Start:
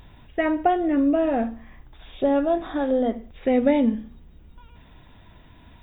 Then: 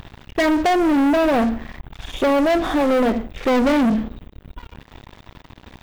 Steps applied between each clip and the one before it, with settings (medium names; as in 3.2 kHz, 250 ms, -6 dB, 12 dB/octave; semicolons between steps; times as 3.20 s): waveshaping leveller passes 5; trim -5.5 dB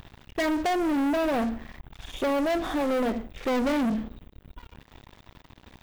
treble shelf 6 kHz +5 dB; trim -8.5 dB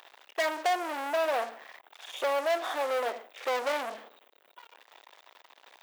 high-pass 520 Hz 24 dB/octave